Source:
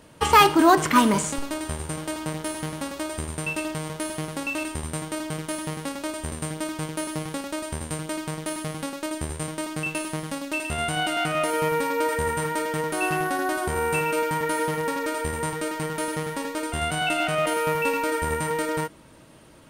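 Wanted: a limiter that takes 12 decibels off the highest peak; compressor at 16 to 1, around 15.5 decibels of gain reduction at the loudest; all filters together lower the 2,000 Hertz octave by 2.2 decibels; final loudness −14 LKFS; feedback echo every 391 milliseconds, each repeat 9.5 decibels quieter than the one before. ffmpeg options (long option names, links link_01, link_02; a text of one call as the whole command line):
ffmpeg -i in.wav -af "equalizer=frequency=2000:width_type=o:gain=-3,acompressor=threshold=-27dB:ratio=16,alimiter=level_in=4.5dB:limit=-24dB:level=0:latency=1,volume=-4.5dB,aecho=1:1:391|782|1173|1564:0.335|0.111|0.0365|0.012,volume=22dB" out.wav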